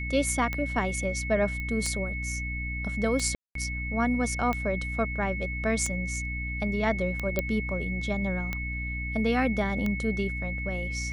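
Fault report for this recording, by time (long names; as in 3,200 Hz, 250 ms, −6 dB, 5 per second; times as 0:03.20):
mains hum 60 Hz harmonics 5 −34 dBFS
scratch tick 45 rpm −17 dBFS
whistle 2,200 Hz −34 dBFS
0:01.60: click −23 dBFS
0:03.35–0:03.55: drop-out 203 ms
0:07.39: click −12 dBFS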